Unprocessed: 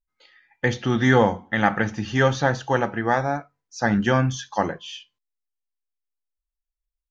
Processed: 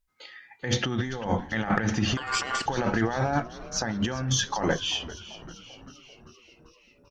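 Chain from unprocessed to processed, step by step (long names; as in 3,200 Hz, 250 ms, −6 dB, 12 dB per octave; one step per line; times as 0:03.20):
compressor whose output falls as the input rises −29 dBFS, ratio −1
harmonic generator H 2 −29 dB, 4 −24 dB, 6 −34 dB, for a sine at −10.5 dBFS
echo with shifted repeats 391 ms, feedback 64%, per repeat −100 Hz, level −16 dB
0:02.17–0:02.66: ring modulation 1,300 Hz
level +1.5 dB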